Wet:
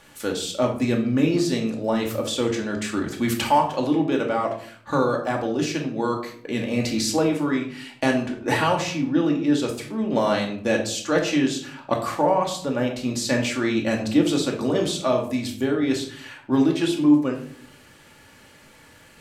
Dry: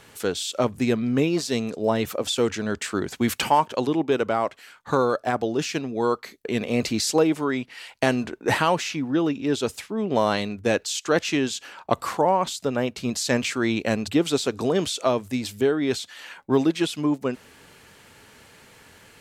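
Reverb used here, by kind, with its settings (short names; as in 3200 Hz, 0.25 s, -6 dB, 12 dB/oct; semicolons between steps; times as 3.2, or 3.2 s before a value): shoebox room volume 720 m³, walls furnished, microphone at 2.4 m; gain -3 dB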